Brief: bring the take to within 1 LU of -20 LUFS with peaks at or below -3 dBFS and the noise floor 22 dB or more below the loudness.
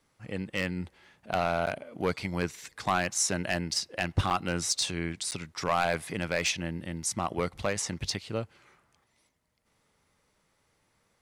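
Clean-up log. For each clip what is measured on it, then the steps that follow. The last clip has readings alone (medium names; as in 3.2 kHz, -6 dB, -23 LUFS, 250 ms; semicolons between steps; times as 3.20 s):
clipped samples 0.4%; clipping level -18.5 dBFS; dropouts 3; longest dropout 8.6 ms; loudness -31.0 LUFS; peak level -18.5 dBFS; loudness target -20.0 LUFS
-> clip repair -18.5 dBFS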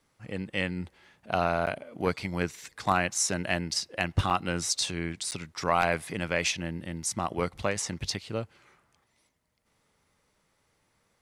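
clipped samples 0.0%; dropouts 3; longest dropout 8.6 ms
-> interpolate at 1.66/4.30/5.31 s, 8.6 ms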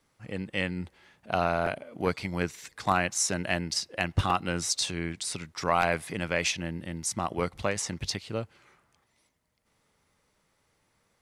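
dropouts 0; loudness -30.0 LUFS; peak level -9.5 dBFS; loudness target -20.0 LUFS
-> trim +10 dB; peak limiter -3 dBFS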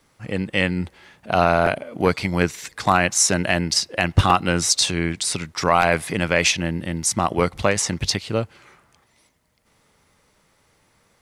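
loudness -20.5 LUFS; peak level -3.0 dBFS; noise floor -62 dBFS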